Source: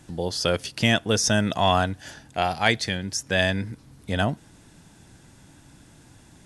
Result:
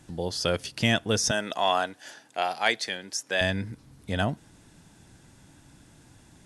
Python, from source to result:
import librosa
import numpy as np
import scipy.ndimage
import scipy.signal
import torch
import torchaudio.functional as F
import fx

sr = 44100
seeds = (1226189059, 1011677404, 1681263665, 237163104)

y = fx.highpass(x, sr, hz=370.0, slope=12, at=(1.31, 3.41))
y = y * 10.0 ** (-3.0 / 20.0)